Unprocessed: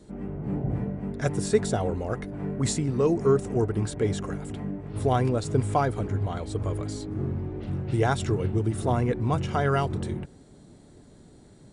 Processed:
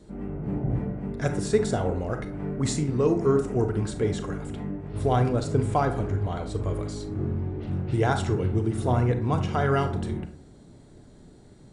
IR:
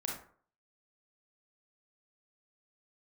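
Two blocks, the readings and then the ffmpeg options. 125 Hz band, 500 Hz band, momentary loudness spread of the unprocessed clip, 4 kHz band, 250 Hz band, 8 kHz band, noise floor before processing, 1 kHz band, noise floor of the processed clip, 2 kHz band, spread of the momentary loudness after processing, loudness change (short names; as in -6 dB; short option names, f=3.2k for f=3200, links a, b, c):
+1.0 dB, +0.5 dB, 9 LU, -0.5 dB, +1.0 dB, -2.0 dB, -52 dBFS, +0.5 dB, -51 dBFS, +0.5 dB, 9 LU, +0.5 dB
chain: -filter_complex "[0:a]asplit=2[a][b];[1:a]atrim=start_sample=2205,lowpass=8.8k,lowshelf=f=63:g=9.5[c];[b][c]afir=irnorm=-1:irlink=0,volume=-3.5dB[d];[a][d]amix=inputs=2:normalize=0,volume=-4dB"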